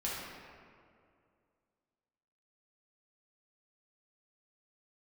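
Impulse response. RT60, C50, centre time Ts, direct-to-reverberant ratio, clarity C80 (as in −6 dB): 2.3 s, −2.0 dB, 122 ms, −7.5 dB, 0.5 dB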